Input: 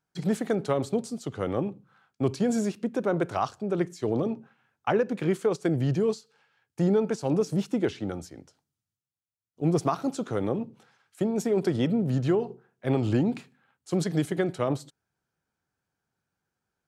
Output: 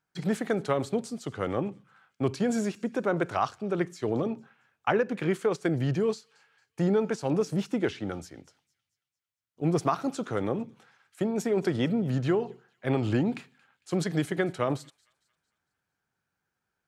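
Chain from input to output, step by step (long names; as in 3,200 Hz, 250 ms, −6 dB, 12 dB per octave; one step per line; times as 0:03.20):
parametric band 1,800 Hz +5.5 dB 1.8 octaves
on a send: delay with a high-pass on its return 226 ms, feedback 44%, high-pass 2,600 Hz, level −22 dB
on the sum: level −2 dB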